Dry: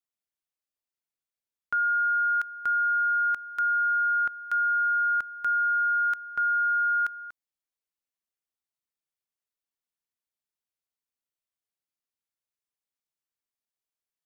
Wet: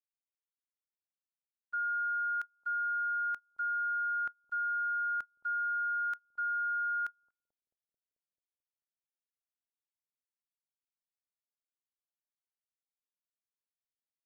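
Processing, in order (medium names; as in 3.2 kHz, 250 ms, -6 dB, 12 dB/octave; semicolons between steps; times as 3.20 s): gate -28 dBFS, range -29 dB; on a send: bucket-brigade echo 219 ms, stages 1024, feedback 76%, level -22 dB; on the sum: trim -8.5 dB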